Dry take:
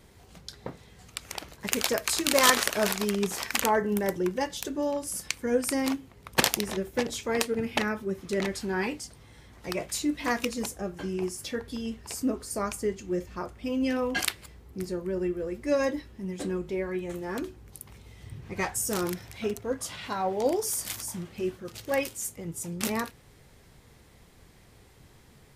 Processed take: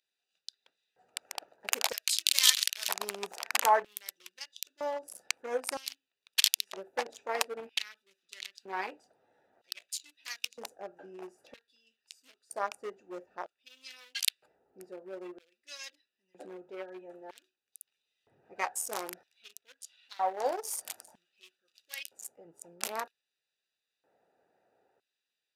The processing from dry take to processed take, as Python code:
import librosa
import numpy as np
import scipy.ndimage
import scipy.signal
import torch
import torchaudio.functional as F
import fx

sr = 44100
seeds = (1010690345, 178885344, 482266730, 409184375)

y = fx.wiener(x, sr, points=41)
y = fx.filter_lfo_highpass(y, sr, shape='square', hz=0.52, low_hz=770.0, high_hz=3400.0, q=1.7)
y = F.gain(torch.from_numpy(y), -1.5).numpy()